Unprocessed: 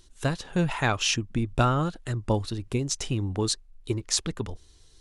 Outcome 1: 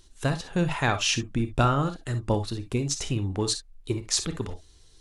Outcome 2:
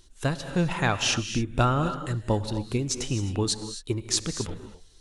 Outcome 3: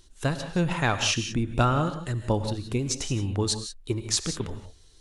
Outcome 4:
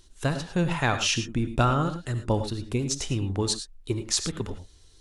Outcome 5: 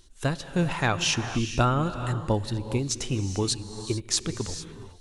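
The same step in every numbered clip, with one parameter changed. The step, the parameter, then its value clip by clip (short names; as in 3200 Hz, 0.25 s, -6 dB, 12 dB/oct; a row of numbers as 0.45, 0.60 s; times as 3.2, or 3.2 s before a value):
non-linear reverb, gate: 80, 290, 200, 130, 470 ms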